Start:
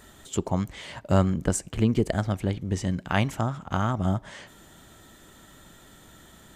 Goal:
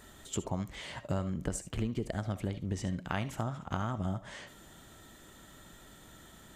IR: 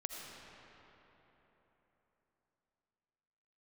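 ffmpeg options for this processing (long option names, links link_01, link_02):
-filter_complex "[0:a]acompressor=threshold=-27dB:ratio=6[link_01];[1:a]atrim=start_sample=2205,atrim=end_sample=3528[link_02];[link_01][link_02]afir=irnorm=-1:irlink=0"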